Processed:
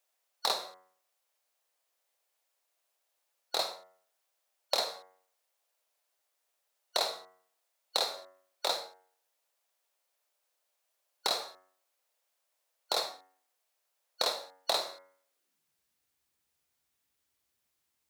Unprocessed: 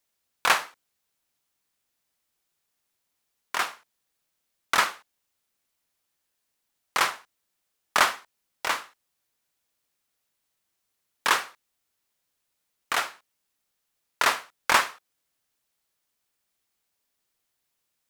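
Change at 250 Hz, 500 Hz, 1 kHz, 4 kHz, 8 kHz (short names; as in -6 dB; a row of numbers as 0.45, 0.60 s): -10.0, -0.5, -11.5, -1.5, -8.0 dB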